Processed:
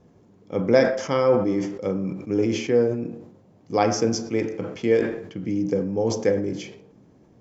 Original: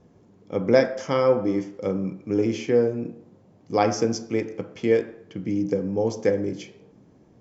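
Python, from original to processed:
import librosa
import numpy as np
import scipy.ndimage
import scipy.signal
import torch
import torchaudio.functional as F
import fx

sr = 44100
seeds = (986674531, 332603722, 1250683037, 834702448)

y = fx.sustainer(x, sr, db_per_s=73.0)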